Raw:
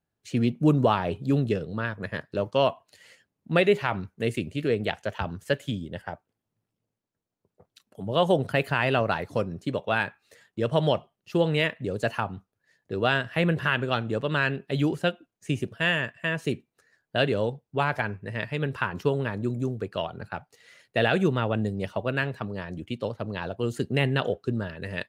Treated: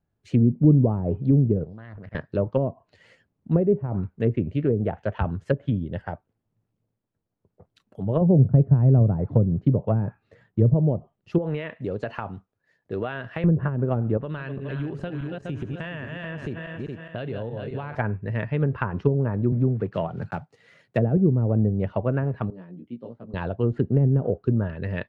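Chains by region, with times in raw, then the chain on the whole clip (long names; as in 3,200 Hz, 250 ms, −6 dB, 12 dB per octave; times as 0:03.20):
0:01.64–0:02.15: output level in coarse steps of 23 dB + highs frequency-modulated by the lows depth 0.3 ms
0:08.21–0:10.74: low-pass filter 2,100 Hz 6 dB per octave + parametric band 130 Hz +8 dB 1.4 octaves
0:11.38–0:13.44: low-shelf EQ 200 Hz −9.5 dB + downward compressor 10 to 1, threshold −26 dBFS + floating-point word with a short mantissa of 4 bits
0:14.17–0:17.95: feedback delay that plays each chunk backwards 208 ms, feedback 59%, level −8 dB + downward compressor 5 to 1, threshold −32 dBFS
0:19.52–0:21.17: one scale factor per block 5 bits + high-pass filter 95 Hz 24 dB per octave + parametric band 160 Hz +4.5 dB 0.57 octaves
0:22.50–0:23.34: resonant band-pass 220 Hz, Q 1.7 + spectral tilt +4.5 dB per octave + double-tracking delay 17 ms −2.5 dB
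whole clip: treble cut that deepens with the level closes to 380 Hz, closed at −20 dBFS; low-pass filter 1,400 Hz 6 dB per octave; low-shelf EQ 130 Hz +9 dB; level +3 dB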